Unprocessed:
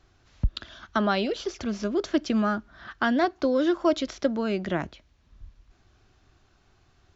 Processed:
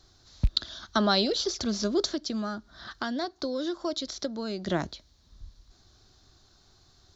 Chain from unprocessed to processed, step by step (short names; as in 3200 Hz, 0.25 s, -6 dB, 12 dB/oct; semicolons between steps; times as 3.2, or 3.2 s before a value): rattling part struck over -22 dBFS, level -33 dBFS; resonant high shelf 3300 Hz +7 dB, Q 3; 2.06–4.67 compressor 2:1, threshold -35 dBFS, peak gain reduction 10 dB